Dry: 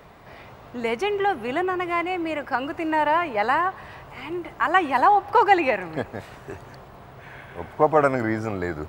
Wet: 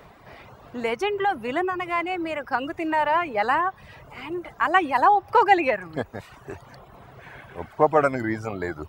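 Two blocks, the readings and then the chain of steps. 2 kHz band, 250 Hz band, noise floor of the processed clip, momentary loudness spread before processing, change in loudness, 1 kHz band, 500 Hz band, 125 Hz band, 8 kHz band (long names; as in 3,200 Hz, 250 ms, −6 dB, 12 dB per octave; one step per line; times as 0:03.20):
−0.5 dB, −1.5 dB, −50 dBFS, 21 LU, −0.5 dB, −0.5 dB, −1.0 dB, −2.5 dB, can't be measured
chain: reverb reduction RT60 0.76 s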